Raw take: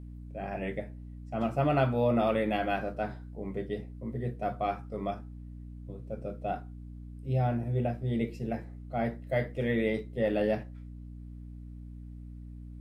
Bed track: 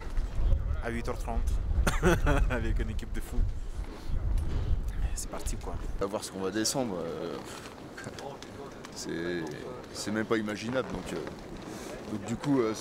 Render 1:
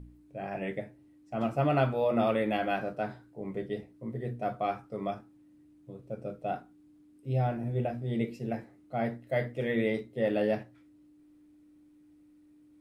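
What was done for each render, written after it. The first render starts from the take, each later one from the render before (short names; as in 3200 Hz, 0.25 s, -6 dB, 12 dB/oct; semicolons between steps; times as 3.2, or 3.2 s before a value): de-hum 60 Hz, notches 4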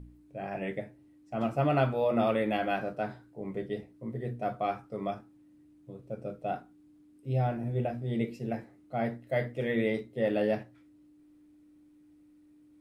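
nothing audible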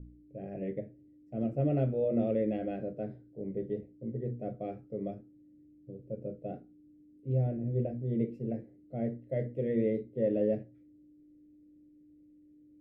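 EQ curve 540 Hz 0 dB, 1000 Hz -29 dB, 2000 Hz -15 dB, 4400 Hz -23 dB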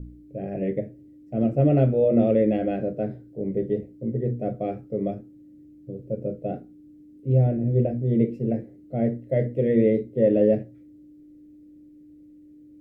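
gain +10 dB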